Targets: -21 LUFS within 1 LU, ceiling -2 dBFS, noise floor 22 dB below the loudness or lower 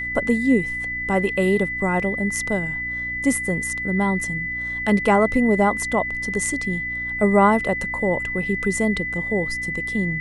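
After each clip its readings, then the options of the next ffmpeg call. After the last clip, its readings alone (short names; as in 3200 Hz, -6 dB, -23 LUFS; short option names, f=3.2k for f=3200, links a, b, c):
hum 60 Hz; harmonics up to 300 Hz; hum level -37 dBFS; steady tone 2000 Hz; tone level -25 dBFS; loudness -21.5 LUFS; peak -4.0 dBFS; loudness target -21.0 LUFS
-> -af "bandreject=f=60:t=h:w=4,bandreject=f=120:t=h:w=4,bandreject=f=180:t=h:w=4,bandreject=f=240:t=h:w=4,bandreject=f=300:t=h:w=4"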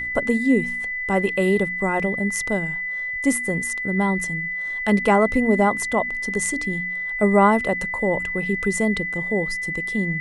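hum none; steady tone 2000 Hz; tone level -25 dBFS
-> -af "bandreject=f=2k:w=30"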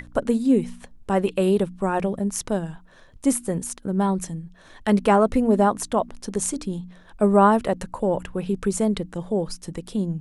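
steady tone none; loudness -23.0 LUFS; peak -4.5 dBFS; loudness target -21.0 LUFS
-> -af "volume=2dB"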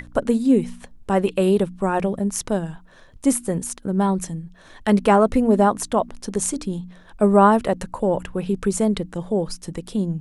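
loudness -21.0 LUFS; peak -2.5 dBFS; noise floor -48 dBFS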